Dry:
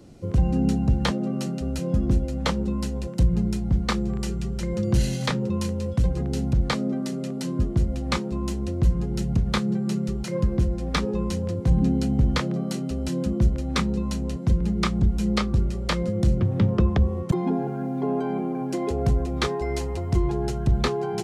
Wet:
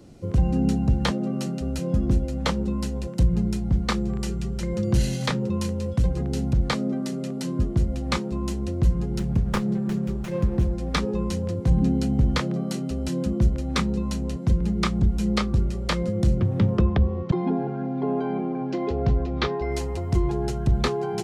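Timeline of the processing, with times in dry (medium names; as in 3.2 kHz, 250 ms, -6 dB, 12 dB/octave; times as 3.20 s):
9.19–10.73 s: sliding maximum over 9 samples
16.81–19.72 s: low-pass 4.8 kHz 24 dB/octave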